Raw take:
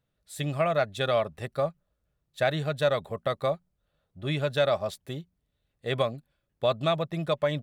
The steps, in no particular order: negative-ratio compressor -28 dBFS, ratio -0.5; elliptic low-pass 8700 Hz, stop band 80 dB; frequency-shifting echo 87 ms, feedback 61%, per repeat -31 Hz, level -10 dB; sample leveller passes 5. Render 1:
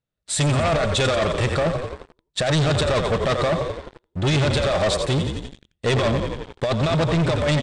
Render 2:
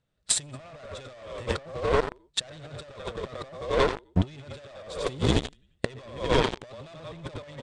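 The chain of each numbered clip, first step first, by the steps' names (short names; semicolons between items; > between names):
negative-ratio compressor > frequency-shifting echo > sample leveller > elliptic low-pass; frequency-shifting echo > sample leveller > negative-ratio compressor > elliptic low-pass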